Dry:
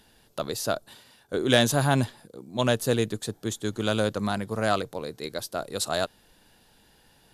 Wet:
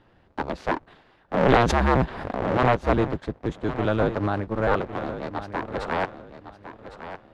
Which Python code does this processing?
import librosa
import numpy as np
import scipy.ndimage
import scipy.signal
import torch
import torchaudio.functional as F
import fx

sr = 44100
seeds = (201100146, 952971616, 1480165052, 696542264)

y = fx.cycle_switch(x, sr, every=2, mode='inverted')
y = fx.quant_float(y, sr, bits=2)
y = scipy.signal.sosfilt(scipy.signal.butter(2, 1700.0, 'lowpass', fs=sr, output='sos'), y)
y = fx.echo_feedback(y, sr, ms=1107, feedback_pct=25, wet_db=-12.0)
y = fx.pre_swell(y, sr, db_per_s=34.0, at=(1.37, 2.82))
y = y * 10.0 ** (3.0 / 20.0)